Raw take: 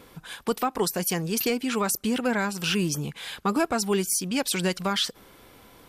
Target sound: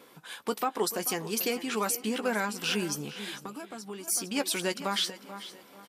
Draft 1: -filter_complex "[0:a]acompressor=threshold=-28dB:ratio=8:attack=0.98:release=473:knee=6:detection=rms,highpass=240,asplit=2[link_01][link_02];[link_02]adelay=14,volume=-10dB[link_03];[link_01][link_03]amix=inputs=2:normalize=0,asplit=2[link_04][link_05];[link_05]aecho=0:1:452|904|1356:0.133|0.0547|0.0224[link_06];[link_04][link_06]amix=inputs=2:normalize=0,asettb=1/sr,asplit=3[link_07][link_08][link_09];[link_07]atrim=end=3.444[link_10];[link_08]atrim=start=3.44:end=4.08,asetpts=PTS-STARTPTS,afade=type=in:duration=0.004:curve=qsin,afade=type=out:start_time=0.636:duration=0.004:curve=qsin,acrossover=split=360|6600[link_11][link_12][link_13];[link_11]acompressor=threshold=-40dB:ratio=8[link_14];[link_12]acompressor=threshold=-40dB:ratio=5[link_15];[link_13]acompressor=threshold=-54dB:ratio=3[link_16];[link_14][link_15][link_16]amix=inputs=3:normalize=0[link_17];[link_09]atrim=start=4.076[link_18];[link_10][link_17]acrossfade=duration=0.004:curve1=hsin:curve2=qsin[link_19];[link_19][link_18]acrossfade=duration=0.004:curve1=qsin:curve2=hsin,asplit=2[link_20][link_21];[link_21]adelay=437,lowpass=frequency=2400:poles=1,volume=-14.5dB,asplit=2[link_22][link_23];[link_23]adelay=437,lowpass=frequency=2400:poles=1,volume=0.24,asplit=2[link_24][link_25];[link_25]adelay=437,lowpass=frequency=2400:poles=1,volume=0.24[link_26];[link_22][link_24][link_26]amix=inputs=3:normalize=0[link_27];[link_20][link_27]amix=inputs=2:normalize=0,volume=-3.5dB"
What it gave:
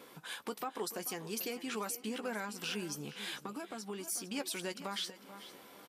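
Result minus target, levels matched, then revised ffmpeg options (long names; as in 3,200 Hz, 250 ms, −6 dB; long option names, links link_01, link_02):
downward compressor: peak gain reduction +10.5 dB
-filter_complex "[0:a]highpass=240,asplit=2[link_01][link_02];[link_02]adelay=14,volume=-10dB[link_03];[link_01][link_03]amix=inputs=2:normalize=0,asplit=2[link_04][link_05];[link_05]aecho=0:1:452|904|1356:0.133|0.0547|0.0224[link_06];[link_04][link_06]amix=inputs=2:normalize=0,asettb=1/sr,asplit=3[link_07][link_08][link_09];[link_07]atrim=end=3.444[link_10];[link_08]atrim=start=3.44:end=4.08,asetpts=PTS-STARTPTS,afade=type=in:duration=0.004:curve=qsin,afade=type=out:start_time=0.636:duration=0.004:curve=qsin,acrossover=split=360|6600[link_11][link_12][link_13];[link_11]acompressor=threshold=-40dB:ratio=8[link_14];[link_12]acompressor=threshold=-40dB:ratio=5[link_15];[link_13]acompressor=threshold=-54dB:ratio=3[link_16];[link_14][link_15][link_16]amix=inputs=3:normalize=0[link_17];[link_09]atrim=start=4.076[link_18];[link_10][link_17]acrossfade=duration=0.004:curve1=hsin:curve2=qsin[link_19];[link_19][link_18]acrossfade=duration=0.004:curve1=qsin:curve2=hsin,asplit=2[link_20][link_21];[link_21]adelay=437,lowpass=frequency=2400:poles=1,volume=-14.5dB,asplit=2[link_22][link_23];[link_23]adelay=437,lowpass=frequency=2400:poles=1,volume=0.24,asplit=2[link_24][link_25];[link_25]adelay=437,lowpass=frequency=2400:poles=1,volume=0.24[link_26];[link_22][link_24][link_26]amix=inputs=3:normalize=0[link_27];[link_20][link_27]amix=inputs=2:normalize=0,volume=-3.5dB"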